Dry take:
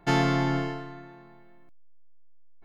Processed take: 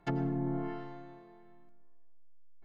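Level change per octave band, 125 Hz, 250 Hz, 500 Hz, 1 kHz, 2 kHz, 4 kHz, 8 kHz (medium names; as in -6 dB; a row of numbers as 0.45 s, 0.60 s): -8.0 dB, -7.0 dB, -9.0 dB, -13.5 dB, -17.0 dB, -21.5 dB, no reading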